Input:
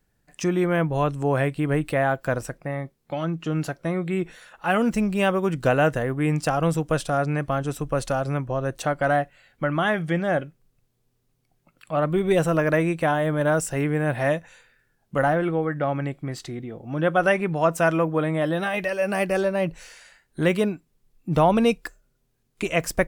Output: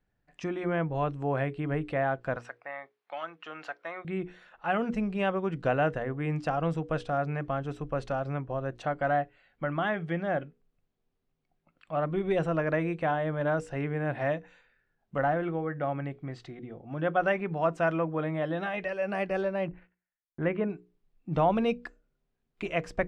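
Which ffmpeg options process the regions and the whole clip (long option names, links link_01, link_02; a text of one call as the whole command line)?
ffmpeg -i in.wav -filter_complex "[0:a]asettb=1/sr,asplit=3[link_01][link_02][link_03];[link_01]atrim=end=2.364[link_04];[link_02]atrim=start=2.36:end=4.05,asetpts=PTS-STARTPTS,afade=type=in:duration=0.004:curve=qsin,afade=type=out:start_time=1.686:duration=0.004:curve=qsin,highpass=990,highshelf=frequency=4800:gain=-9.5,acontrast=56[link_05];[link_03]atrim=start=4.046[link_06];[link_04][link_05]acrossfade=duration=0.004:curve1=hsin:curve2=qsin[link_07];[link_07][link_06]acrossfade=duration=0.004:curve1=qsin:curve2=hsin,asettb=1/sr,asplit=3[link_08][link_09][link_10];[link_08]atrim=end=19.684[link_11];[link_09]atrim=start=19.68:end=20.7,asetpts=PTS-STARTPTS,afade=type=in:duration=0.004:curve=qsin,afade=type=out:start_time=1.016:duration=0.004:curve=qsin,lowpass=frequency=2300:width=0.5412,lowpass=frequency=2300:width=1.3066,agate=range=-35dB:threshold=-47dB:ratio=16:release=100:detection=peak[link_12];[link_10]atrim=start=20.696[link_13];[link_11][link_12]acrossfade=duration=0.004:curve1=hsin:curve2=qsin[link_14];[link_14][link_13]acrossfade=duration=0.004:curve1=qsin:curve2=hsin,lowpass=3300,equalizer=frequency=720:width=7.1:gain=3,bandreject=frequency=60:width_type=h:width=6,bandreject=frequency=120:width_type=h:width=6,bandreject=frequency=180:width_type=h:width=6,bandreject=frequency=240:width_type=h:width=6,bandreject=frequency=300:width_type=h:width=6,bandreject=frequency=360:width_type=h:width=6,bandreject=frequency=420:width_type=h:width=6,bandreject=frequency=480:width_type=h:width=6,volume=-7dB" out.wav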